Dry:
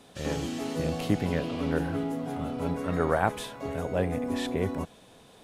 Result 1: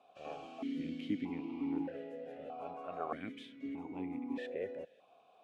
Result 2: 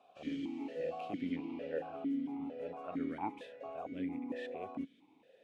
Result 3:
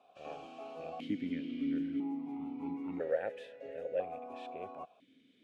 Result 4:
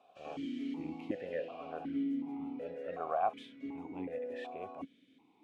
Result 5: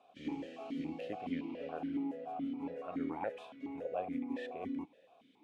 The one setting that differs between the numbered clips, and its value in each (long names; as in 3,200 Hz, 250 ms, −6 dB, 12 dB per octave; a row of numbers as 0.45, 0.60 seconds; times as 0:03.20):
formant filter that steps through the vowels, speed: 1.6, 4.4, 1, 2.7, 7.1 Hertz